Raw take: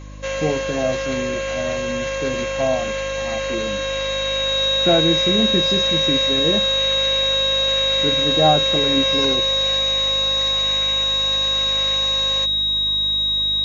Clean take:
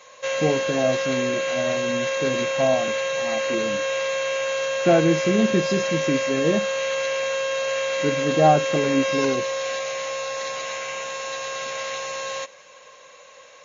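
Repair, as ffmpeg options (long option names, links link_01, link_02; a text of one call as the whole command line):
ffmpeg -i in.wav -af "bandreject=frequency=50.9:width_type=h:width=4,bandreject=frequency=101.8:width_type=h:width=4,bandreject=frequency=152.7:width_type=h:width=4,bandreject=frequency=203.6:width_type=h:width=4,bandreject=frequency=254.5:width_type=h:width=4,bandreject=frequency=305.4:width_type=h:width=4,bandreject=frequency=3800:width=30" out.wav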